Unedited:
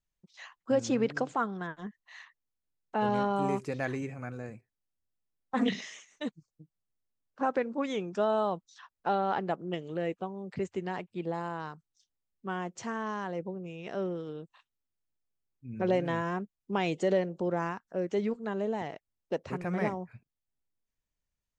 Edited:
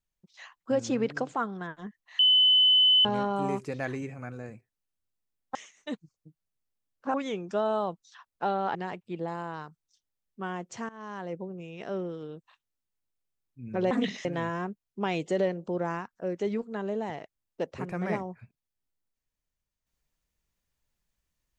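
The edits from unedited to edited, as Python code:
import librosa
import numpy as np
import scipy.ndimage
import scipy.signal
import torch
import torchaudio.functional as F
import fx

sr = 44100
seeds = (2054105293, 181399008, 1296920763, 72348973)

y = fx.edit(x, sr, fx.bleep(start_s=2.19, length_s=0.86, hz=3020.0, db=-17.0),
    fx.move(start_s=5.55, length_s=0.34, to_s=15.97),
    fx.cut(start_s=7.48, length_s=0.3),
    fx.cut(start_s=9.39, length_s=1.42),
    fx.fade_in_from(start_s=12.95, length_s=0.54, curve='qsin', floor_db=-20.5), tone=tone)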